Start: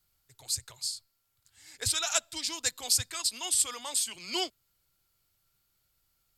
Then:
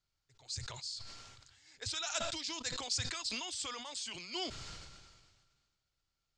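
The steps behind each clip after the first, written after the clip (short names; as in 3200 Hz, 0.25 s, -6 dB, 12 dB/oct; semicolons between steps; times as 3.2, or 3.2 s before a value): steep low-pass 6900 Hz 36 dB/oct; sustainer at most 35 dB/s; gain -8 dB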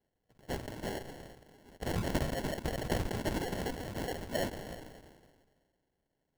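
bell 3100 Hz +11.5 dB 2.1 oct; sample-and-hold 36×; gain -3 dB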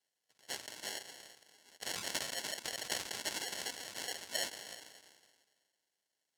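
band-pass 6200 Hz, Q 0.77; gain +8.5 dB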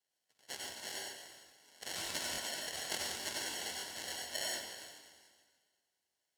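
plate-style reverb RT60 0.5 s, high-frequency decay 0.9×, pre-delay 80 ms, DRR -1 dB; crackling interface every 0.29 s, samples 1024, repeat, from 0.88; gain -3.5 dB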